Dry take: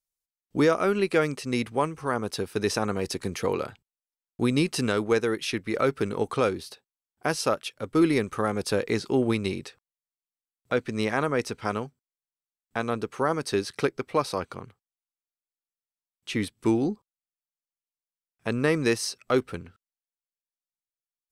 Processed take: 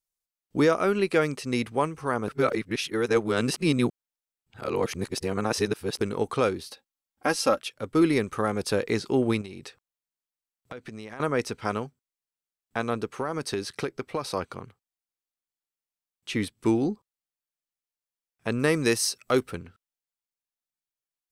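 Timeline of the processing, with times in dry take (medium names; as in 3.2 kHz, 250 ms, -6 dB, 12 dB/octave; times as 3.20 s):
2.28–6.01 s: reverse
6.68–7.59 s: comb 3.7 ms, depth 66%
9.41–11.20 s: compression 12:1, threshold -35 dBFS
13.18–14.28 s: compression, threshold -24 dBFS
18.59–19.51 s: treble shelf 6.8 kHz +10 dB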